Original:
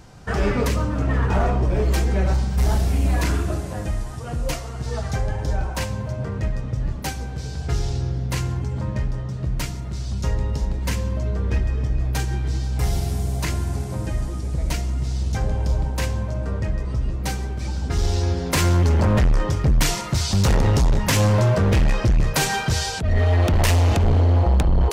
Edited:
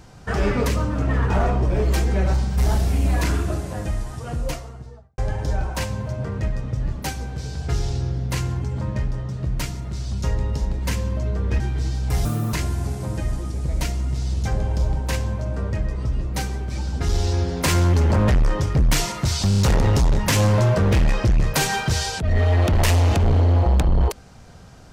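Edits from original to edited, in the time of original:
0:04.29–0:05.18: fade out and dull
0:11.60–0:12.29: remove
0:12.94–0:13.42: play speed 173%
0:20.38: stutter 0.03 s, 4 plays

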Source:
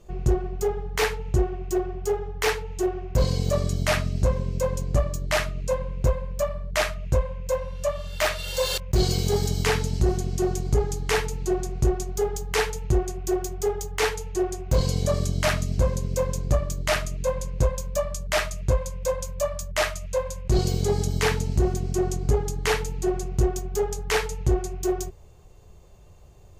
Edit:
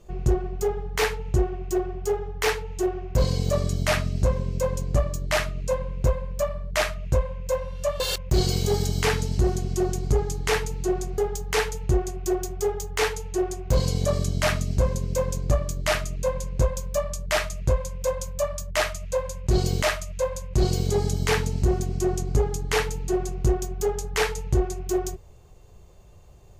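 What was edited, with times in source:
0:08.00–0:08.62: remove
0:11.80–0:12.19: remove
0:19.76–0:20.83: repeat, 2 plays

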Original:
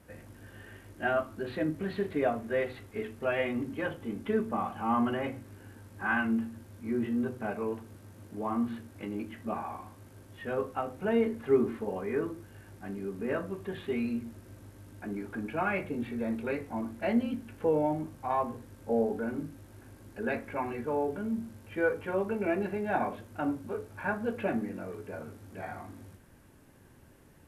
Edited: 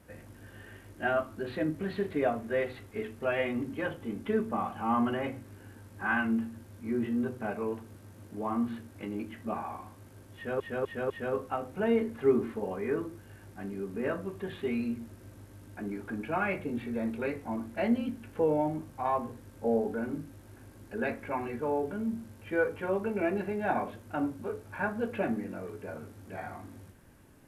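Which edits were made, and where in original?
0:10.35–0:10.60: repeat, 4 plays

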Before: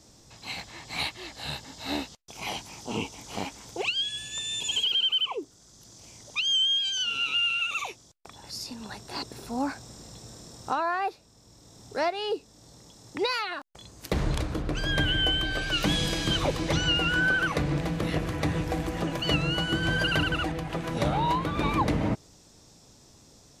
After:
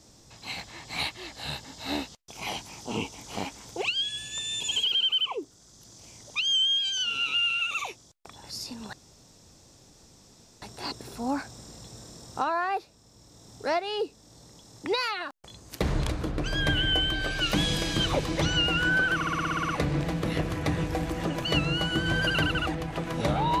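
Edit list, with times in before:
0:08.93: splice in room tone 1.69 s
0:17.46: stutter 0.06 s, 10 plays

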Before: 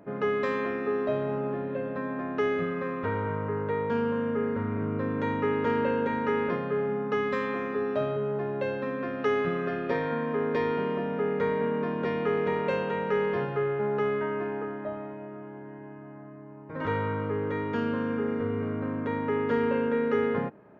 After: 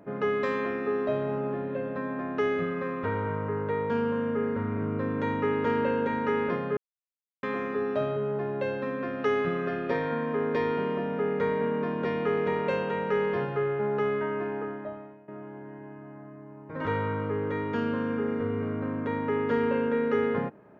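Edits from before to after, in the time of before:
0:06.77–0:07.43: silence
0:14.69–0:15.28: fade out, to −18 dB

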